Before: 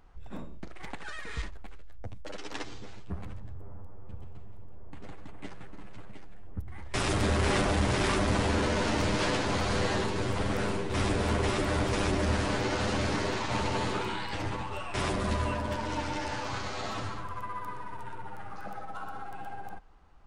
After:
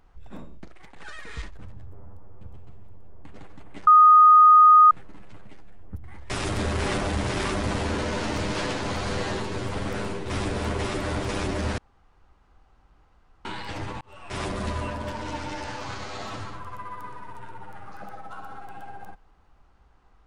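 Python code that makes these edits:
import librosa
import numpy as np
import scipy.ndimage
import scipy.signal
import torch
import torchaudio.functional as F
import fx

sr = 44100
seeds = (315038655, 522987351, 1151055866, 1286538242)

y = fx.edit(x, sr, fx.fade_out_to(start_s=0.57, length_s=0.39, floor_db=-12.5),
    fx.cut(start_s=1.59, length_s=1.68),
    fx.insert_tone(at_s=5.55, length_s=1.04, hz=1240.0, db=-9.5),
    fx.room_tone_fill(start_s=12.42, length_s=1.67),
    fx.fade_in_span(start_s=14.65, length_s=0.42), tone=tone)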